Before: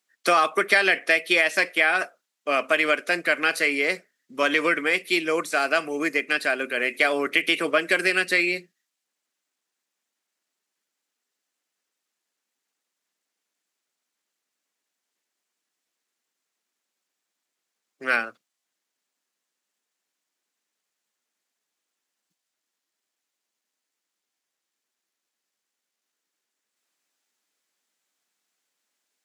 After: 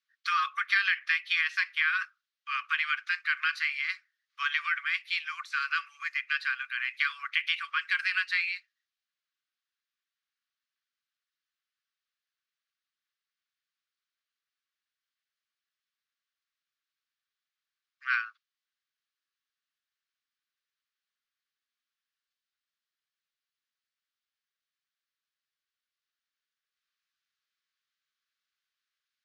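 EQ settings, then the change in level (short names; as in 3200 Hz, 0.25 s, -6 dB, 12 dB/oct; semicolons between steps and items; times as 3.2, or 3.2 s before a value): rippled Chebyshev high-pass 1100 Hz, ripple 3 dB; air absorption 270 m; high shelf 3700 Hz +11.5 dB; -4.0 dB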